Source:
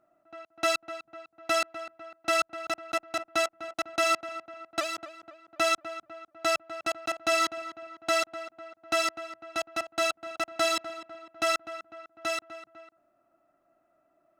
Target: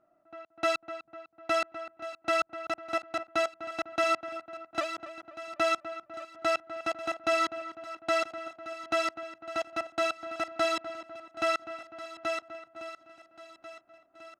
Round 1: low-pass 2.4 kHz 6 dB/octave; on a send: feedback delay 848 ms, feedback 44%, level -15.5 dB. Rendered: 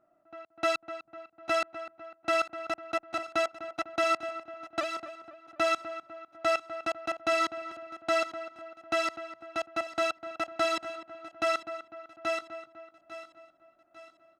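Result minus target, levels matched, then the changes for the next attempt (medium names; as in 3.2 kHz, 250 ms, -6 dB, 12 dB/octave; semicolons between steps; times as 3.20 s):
echo 543 ms early
change: feedback delay 1391 ms, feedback 44%, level -15.5 dB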